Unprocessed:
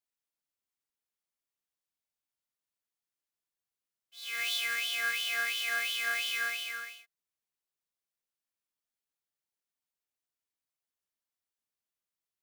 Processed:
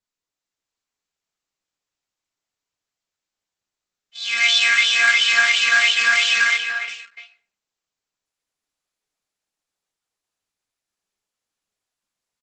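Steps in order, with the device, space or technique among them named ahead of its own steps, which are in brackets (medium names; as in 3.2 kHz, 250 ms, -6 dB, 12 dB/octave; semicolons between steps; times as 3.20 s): 5.94–6.88 s: gate -35 dBFS, range -18 dB; speakerphone in a meeting room (reverberation RT60 0.40 s, pre-delay 8 ms, DRR 1.5 dB; speakerphone echo 290 ms, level -6 dB; level rider gain up to 7.5 dB; gate -48 dBFS, range -9 dB; trim +8 dB; Opus 12 kbps 48 kHz)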